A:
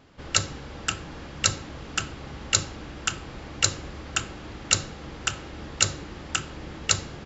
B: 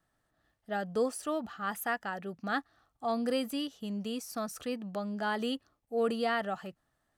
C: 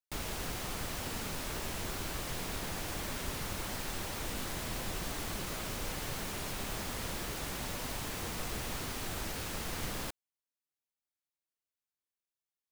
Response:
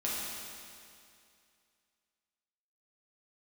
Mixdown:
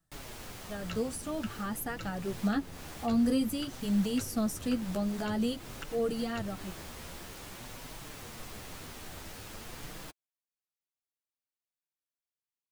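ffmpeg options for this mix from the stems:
-filter_complex "[0:a]lowpass=3.1k,adelay=550,volume=-9dB[a];[1:a]bass=f=250:g=10,treble=f=4k:g=10,dynaudnorm=f=130:g=21:m=10dB,volume=-4.5dB,asplit=2[b][c];[2:a]volume=-3dB[d];[c]apad=whole_len=344043[e];[a][e]sidechaingate=range=-33dB:threshold=-60dB:ratio=16:detection=peak[f];[f][b][d]amix=inputs=3:normalize=0,acrossover=split=490[g][h];[h]acompressor=threshold=-37dB:ratio=2.5[i];[g][i]amix=inputs=2:normalize=0,flanger=delay=5.9:depth=7.5:regen=-19:speed=0.5:shape=triangular"

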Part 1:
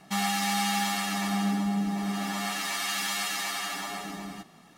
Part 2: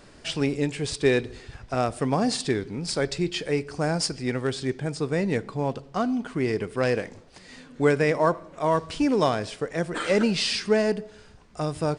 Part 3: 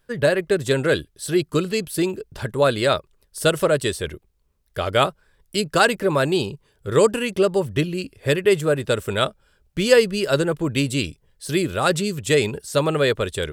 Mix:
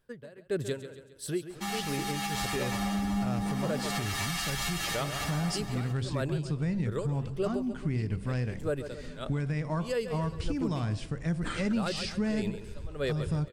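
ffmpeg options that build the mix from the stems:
-filter_complex "[0:a]dynaudnorm=f=310:g=5:m=10dB,adelay=1500,volume=-6.5dB[a];[1:a]bandreject=f=65.65:t=h:w=4,bandreject=f=131.3:t=h:w=4,bandreject=f=196.95:t=h:w=4,bandreject=f=262.6:t=h:w=4,bandreject=f=328.25:t=h:w=4,bandreject=f=393.9:t=h:w=4,bandreject=f=459.55:t=h:w=4,bandreject=f=525.2:t=h:w=4,bandreject=f=590.85:t=h:w=4,bandreject=f=656.5:t=h:w=4,bandreject=f=722.15:t=h:w=4,bandreject=f=787.8:t=h:w=4,bandreject=f=853.45:t=h:w=4,bandreject=f=919.1:t=h:w=4,bandreject=f=984.75:t=h:w=4,bandreject=f=1.0504k:t=h:w=4,bandreject=f=1.11605k:t=h:w=4,asubboost=boost=12:cutoff=130,adelay=1500,volume=-4.5dB[b];[2:a]equalizer=f=220:w=0.32:g=4.5,aeval=exprs='val(0)*pow(10,-27*(0.5-0.5*cos(2*PI*1.6*n/s))/20)':c=same,volume=-9dB,asplit=2[c][d];[d]volume=-12dB[e];[a][b]amix=inputs=2:normalize=0,acompressor=threshold=-22dB:ratio=6,volume=0dB[f];[e]aecho=0:1:136|272|408|544|680|816:1|0.43|0.185|0.0795|0.0342|0.0147[g];[c][f][g]amix=inputs=3:normalize=0,alimiter=limit=-21.5dB:level=0:latency=1:release=350"

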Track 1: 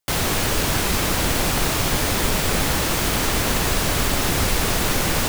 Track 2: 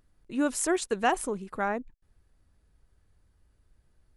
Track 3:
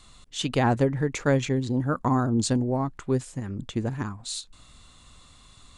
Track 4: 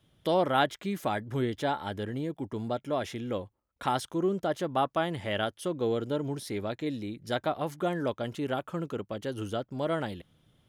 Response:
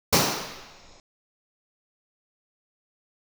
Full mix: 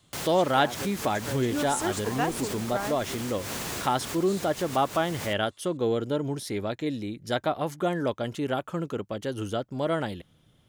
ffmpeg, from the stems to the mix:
-filter_complex "[0:a]highpass=100,adelay=50,volume=-12dB[a];[1:a]adelay=1150,volume=-4dB[b];[2:a]highpass=360,volume=-13dB[c];[3:a]acontrast=63,volume=-3.5dB,asplit=2[d][e];[e]apad=whole_len=235198[f];[a][f]sidechaincompress=threshold=-36dB:ratio=4:attack=6.5:release=122[g];[g][b][c][d]amix=inputs=4:normalize=0,equalizer=f=7k:t=o:w=0.87:g=3"

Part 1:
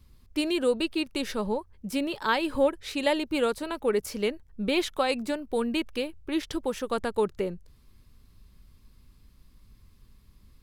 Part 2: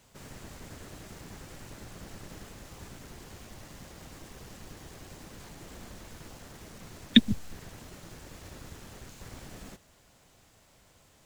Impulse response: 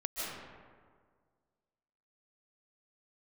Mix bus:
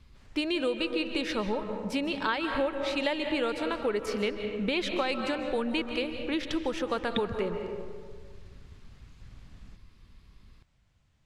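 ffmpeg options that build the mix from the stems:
-filter_complex "[0:a]volume=-2dB,asplit=2[a][b];[b]volume=-8.5dB[c];[1:a]asubboost=boost=5.5:cutoff=180,volume=-15.5dB[d];[2:a]atrim=start_sample=2205[e];[c][e]afir=irnorm=-1:irlink=0[f];[a][d][f]amix=inputs=3:normalize=0,lowpass=2.5k,crystalizer=i=5.5:c=0,acompressor=threshold=-26dB:ratio=4"

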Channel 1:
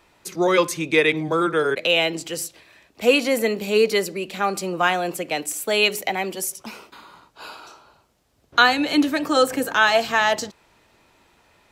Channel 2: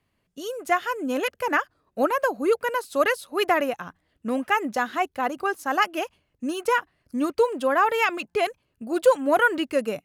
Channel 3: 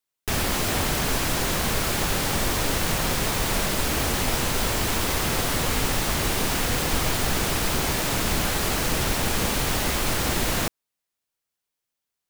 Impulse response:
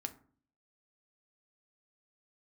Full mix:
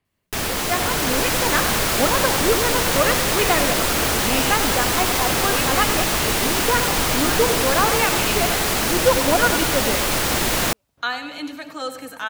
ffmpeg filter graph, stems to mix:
-filter_complex "[0:a]equalizer=f=380:w=1.9:g=-8,adelay=2450,volume=-14dB,asplit=2[a][b];[b]volume=-11.5dB[c];[1:a]volume=-3.5dB,asplit=2[d][e];[e]volume=-9dB[f];[2:a]lowshelf=f=200:g=-6.5,adelay=50,volume=1.5dB[g];[c][f]amix=inputs=2:normalize=0,aecho=0:1:96|192|288|384|480|576|672|768|864:1|0.59|0.348|0.205|0.121|0.0715|0.0422|0.0249|0.0147[h];[a][d][g][h]amix=inputs=4:normalize=0,dynaudnorm=f=150:g=13:m=4.5dB"

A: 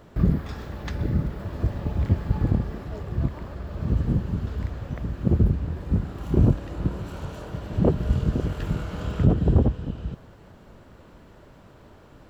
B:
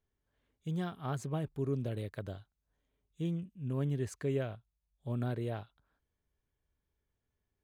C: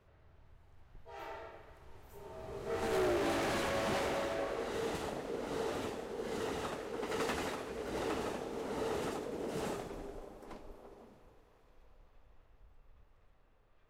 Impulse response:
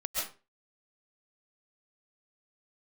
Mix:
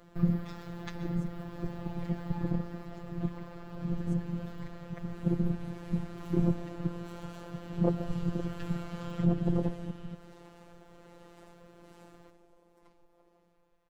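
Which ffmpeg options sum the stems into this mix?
-filter_complex "[0:a]volume=-5dB,asplit=2[a][b];[b]volume=-14.5dB[c];[1:a]volume=-11dB[d];[2:a]acompressor=threshold=-52dB:ratio=2,adelay=2350,volume=-5.5dB[e];[3:a]atrim=start_sample=2205[f];[c][f]afir=irnorm=-1:irlink=0[g];[a][d][e][g]amix=inputs=4:normalize=0,afftfilt=real='hypot(re,im)*cos(PI*b)':imag='0':win_size=1024:overlap=0.75"

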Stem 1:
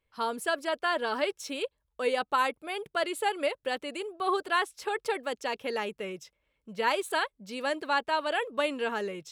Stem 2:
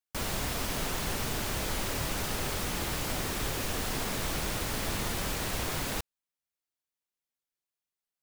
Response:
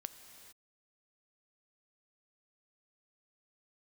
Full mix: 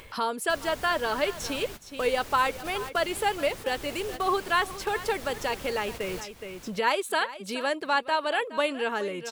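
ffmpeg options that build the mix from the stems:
-filter_complex "[0:a]lowshelf=f=220:g=-3.5,volume=2.5dB,asplit=3[a][b][c];[b]volume=-16.5dB[d];[1:a]adelay=350,volume=-10.5dB,asplit=2[e][f];[f]volume=-19.5dB[g];[c]apad=whole_len=377968[h];[e][h]sidechaingate=range=-33dB:threshold=-41dB:ratio=16:detection=peak[i];[d][g]amix=inputs=2:normalize=0,aecho=0:1:419:1[j];[a][i][j]amix=inputs=3:normalize=0,acompressor=mode=upward:threshold=-26dB:ratio=2.5"

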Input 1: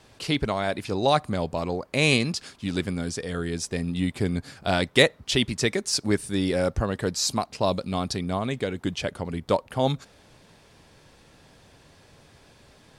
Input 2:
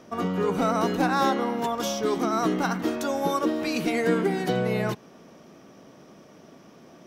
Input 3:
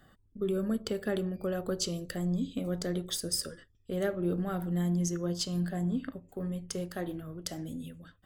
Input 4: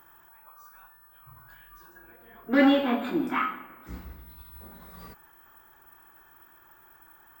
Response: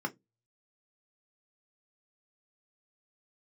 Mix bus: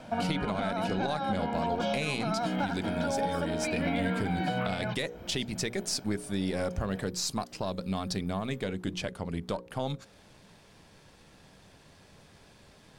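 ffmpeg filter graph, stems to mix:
-filter_complex "[0:a]aeval=exprs='if(lt(val(0),0),0.708*val(0),val(0))':c=same,equalizer=f=190:t=o:w=0.24:g=6,bandreject=f=60:t=h:w=6,bandreject=f=120:t=h:w=6,bandreject=f=180:t=h:w=6,bandreject=f=240:t=h:w=6,bandreject=f=300:t=h:w=6,bandreject=f=360:t=h:w=6,bandreject=f=420:t=h:w=6,bandreject=f=480:t=h:w=6,bandreject=f=540:t=h:w=6,volume=-1dB[a];[1:a]lowpass=f=3.7k:w=0.5412,lowpass=f=3.7k:w=1.3066,aecho=1:1:1.3:0.96,acrossover=split=720|2500[b][c][d];[b]acompressor=threshold=-29dB:ratio=4[e];[c]acompressor=threshold=-34dB:ratio=4[f];[d]acompressor=threshold=-42dB:ratio=4[g];[e][f][g]amix=inputs=3:normalize=0,volume=1.5dB[h];[2:a]asoftclip=type=hard:threshold=-24.5dB,volume=-17dB[i];[3:a]adelay=1250,volume=-10.5dB,afade=t=in:st=2.18:d=0.23:silence=0.398107[j];[a][h][i][j]amix=inputs=4:normalize=0,alimiter=limit=-20dB:level=0:latency=1:release=282"

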